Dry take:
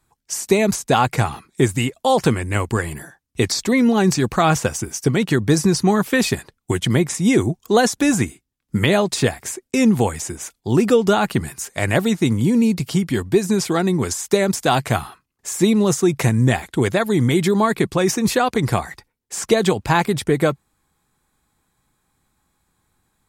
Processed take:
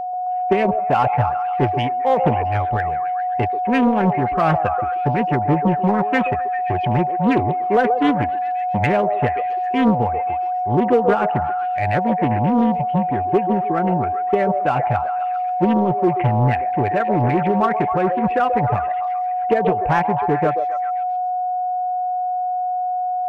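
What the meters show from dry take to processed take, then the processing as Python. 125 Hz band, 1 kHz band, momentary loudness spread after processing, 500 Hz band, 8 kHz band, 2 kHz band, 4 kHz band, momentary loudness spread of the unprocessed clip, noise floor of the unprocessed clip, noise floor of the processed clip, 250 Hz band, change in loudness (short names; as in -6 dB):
-2.0 dB, +8.5 dB, 5 LU, -0.5 dB, under -30 dB, -2.5 dB, -12.5 dB, 9 LU, -74 dBFS, -22 dBFS, -2.5 dB, -0.5 dB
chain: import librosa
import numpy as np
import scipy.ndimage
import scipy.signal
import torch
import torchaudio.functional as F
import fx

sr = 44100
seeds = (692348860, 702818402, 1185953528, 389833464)

p1 = fx.bin_expand(x, sr, power=1.5)
p2 = scipy.signal.sosfilt(scipy.signal.butter(12, 2800.0, 'lowpass', fs=sr, output='sos'), p1)
p3 = 10.0 ** (-19.0 / 20.0) * (np.abs((p2 / 10.0 ** (-19.0 / 20.0) + 3.0) % 4.0 - 2.0) - 1.0)
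p4 = p2 + (p3 * librosa.db_to_amplitude(-12.0))
p5 = p4 + 10.0 ** (-23.0 / 20.0) * np.sin(2.0 * np.pi * 730.0 * np.arange(len(p4)) / sr)
p6 = p5 + fx.echo_stepped(p5, sr, ms=133, hz=590.0, octaves=0.7, feedback_pct=70, wet_db=-3.5, dry=0)
y = fx.doppler_dist(p6, sr, depth_ms=0.41)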